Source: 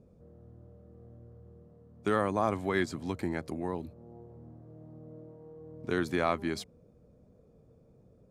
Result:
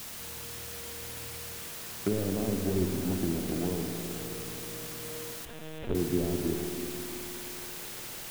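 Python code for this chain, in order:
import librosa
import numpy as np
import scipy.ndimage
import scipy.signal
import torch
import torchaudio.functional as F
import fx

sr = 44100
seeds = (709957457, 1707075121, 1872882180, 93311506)

p1 = scipy.signal.medfilt(x, 41)
p2 = fx.env_lowpass_down(p1, sr, base_hz=400.0, full_db=-29.5)
p3 = fx.dispersion(p2, sr, late='highs', ms=59.0, hz=1100.0, at=(2.59, 3.15))
p4 = fx.quant_dither(p3, sr, seeds[0], bits=6, dither='triangular')
p5 = p3 + (p4 * 10.0 ** (-6.0 / 20.0))
p6 = fx.rev_spring(p5, sr, rt60_s=3.8, pass_ms=(53,), chirp_ms=60, drr_db=3.5)
p7 = fx.lpc_vocoder(p6, sr, seeds[1], excitation='pitch_kept', order=8, at=(5.45, 5.95))
y = fx.echo_crushed(p7, sr, ms=335, feedback_pct=55, bits=8, wet_db=-11)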